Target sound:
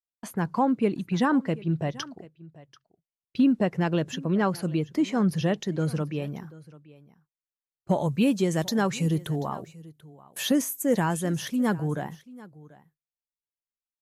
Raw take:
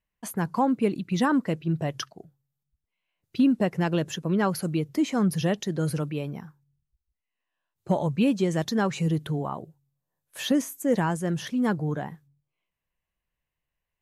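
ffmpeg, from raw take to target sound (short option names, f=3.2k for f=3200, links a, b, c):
-af "agate=range=-29dB:threshold=-46dB:ratio=16:detection=peak,asetnsamples=n=441:p=0,asendcmd='6.22 highshelf g 2;7.99 highshelf g 10',highshelf=f=8.1k:g=-10.5,aecho=1:1:737:0.0944"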